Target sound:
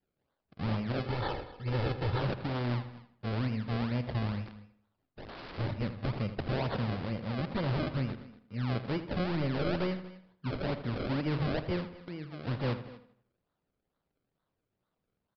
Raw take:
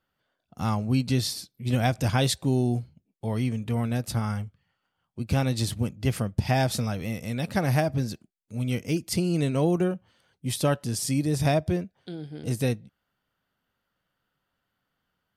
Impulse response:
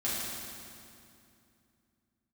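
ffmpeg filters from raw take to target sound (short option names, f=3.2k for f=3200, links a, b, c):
-filter_complex "[0:a]aeval=exprs='0.0841*(abs(mod(val(0)/0.0841+3,4)-2)-1)':c=same,equalizer=f=720:t=o:w=0.22:g=-9.5,acrusher=samples=33:mix=1:aa=0.000001:lfo=1:lforange=33:lforate=2.2,asplit=2[a][b];[b]adelay=81,lowpass=f=3.9k:p=1,volume=-11.5dB,asplit=2[c][d];[d]adelay=81,lowpass=f=3.9k:p=1,volume=0.45,asplit=2[e][f];[f]adelay=81,lowpass=f=3.9k:p=1,volume=0.45,asplit=2[g][h];[h]adelay=81,lowpass=f=3.9k:p=1,volume=0.45,asplit=2[i][j];[j]adelay=81,lowpass=f=3.9k:p=1,volume=0.45[k];[c][e][g][i][k]amix=inputs=5:normalize=0[l];[a][l]amix=inputs=2:normalize=0,adynamicequalizer=threshold=0.00282:dfrequency=570:dqfactor=6.6:tfrequency=570:tqfactor=6.6:attack=5:release=100:ratio=0.375:range=2.5:mode=boostabove:tftype=bell,asettb=1/sr,asplit=3[m][n][o];[m]atrim=end=0.994[p];[n]atrim=start=0.99:end=2.19,asetpts=PTS-STARTPTS,afade=t=in:d=0.004:c=qsin,afade=t=out:st=1.196:d=0.004:c=qsin,aecho=1:1:2.3:0.52,atrim=end_sample=52920[q];[o]atrim=start=2.186[r];[p][q]acrossfade=d=0.004:c1=hsin:c2=qsin[s];[s][r]acrossfade=d=0.004:c1=qsin:c2=hsin,asplit=2[t][u];[u]aecho=0:1:239:0.126[v];[t][v]amix=inputs=2:normalize=0,asplit=3[w][x][y];[w]afade=t=out:st=4.45:d=0.02[z];[x]aeval=exprs='(mod(59.6*val(0)+1,2)-1)/59.6':c=same,afade=t=in:st=4.45:d=0.02,afade=t=out:st=5.57:d=0.02[aa];[y]afade=t=in:st=5.57:d=0.02[ab];[z][aa][ab]amix=inputs=3:normalize=0,aresample=11025,aresample=44100,volume=-4.5dB"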